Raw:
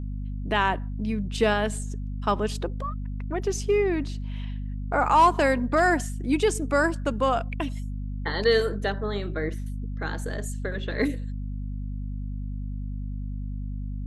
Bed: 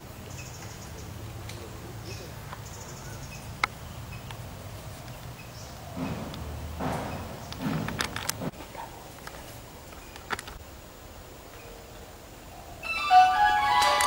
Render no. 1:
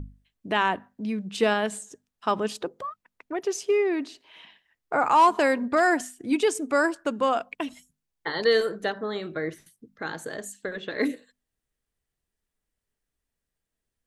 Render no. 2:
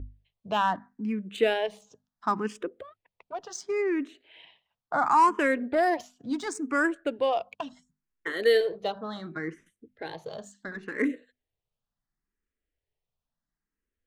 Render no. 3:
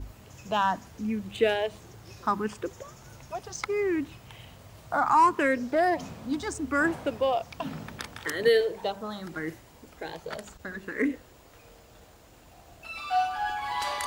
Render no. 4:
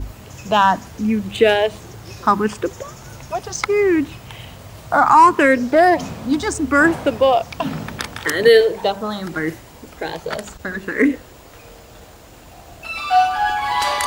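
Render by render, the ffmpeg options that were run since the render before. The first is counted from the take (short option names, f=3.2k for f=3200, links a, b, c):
-af "bandreject=f=50:t=h:w=6,bandreject=f=100:t=h:w=6,bandreject=f=150:t=h:w=6,bandreject=f=200:t=h:w=6,bandreject=f=250:t=h:w=6"
-filter_complex "[0:a]adynamicsmooth=sensitivity=5:basefreq=4.5k,asplit=2[a][b];[b]afreqshift=0.71[c];[a][c]amix=inputs=2:normalize=1"
-filter_complex "[1:a]volume=-8.5dB[a];[0:a][a]amix=inputs=2:normalize=0"
-af "volume=11.5dB,alimiter=limit=-2dB:level=0:latency=1"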